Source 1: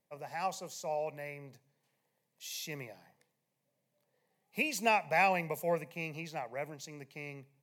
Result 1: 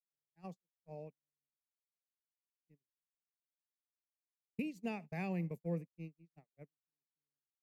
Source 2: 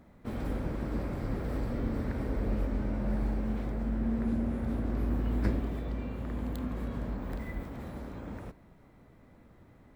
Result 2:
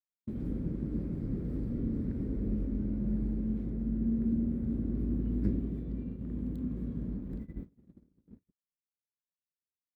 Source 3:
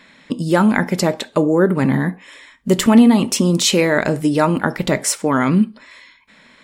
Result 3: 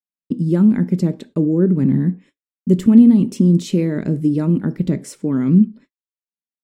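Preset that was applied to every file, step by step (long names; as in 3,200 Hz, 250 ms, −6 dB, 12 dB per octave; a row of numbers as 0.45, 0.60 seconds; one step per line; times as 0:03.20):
parametric band 170 Hz +7 dB 0.8 octaves
noise gate −34 dBFS, range −58 dB
low shelf with overshoot 510 Hz +13 dB, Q 1.5
level −17 dB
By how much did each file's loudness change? −8.5, 0.0, 0.0 LU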